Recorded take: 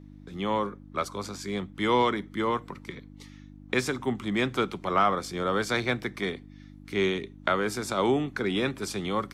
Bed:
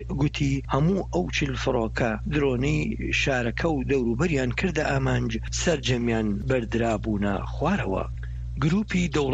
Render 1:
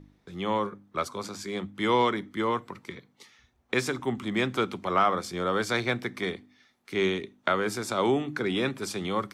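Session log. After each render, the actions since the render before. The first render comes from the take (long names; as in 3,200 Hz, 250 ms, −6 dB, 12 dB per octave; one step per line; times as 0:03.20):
hum removal 50 Hz, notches 6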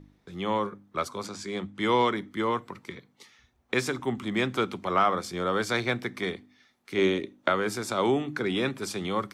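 0:01.27–0:01.85: low-pass filter 9,800 Hz 24 dB per octave
0:06.98–0:07.50: hollow resonant body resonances 310/540 Hz, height 9 dB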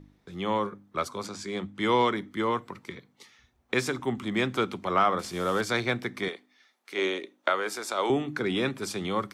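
0:05.19–0:05.61: linear delta modulator 64 kbit/s, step −39 dBFS
0:06.28–0:08.10: high-pass filter 450 Hz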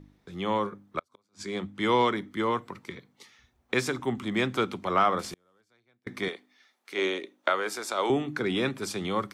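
0:00.99–0:01.42: gate with flip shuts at −26 dBFS, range −38 dB
0:05.26–0:06.07: gate with flip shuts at −28 dBFS, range −40 dB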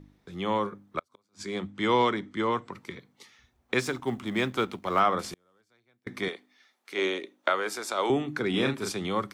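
0:01.68–0:02.73: Butterworth low-pass 9,000 Hz 48 dB per octave
0:03.80–0:05.00: mu-law and A-law mismatch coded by A
0:08.50–0:08.92: double-tracking delay 37 ms −4 dB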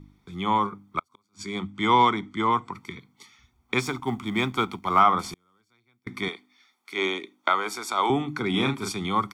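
comb filter 0.9 ms, depth 71%
dynamic equaliser 750 Hz, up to +6 dB, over −40 dBFS, Q 1.4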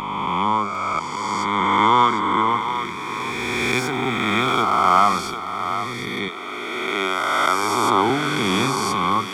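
peak hold with a rise ahead of every peak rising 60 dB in 2.98 s
feedback echo with a high-pass in the loop 751 ms, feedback 28%, high-pass 450 Hz, level −9 dB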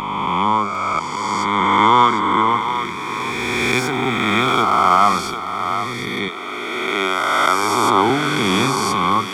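level +3 dB
brickwall limiter −1 dBFS, peak gain reduction 2.5 dB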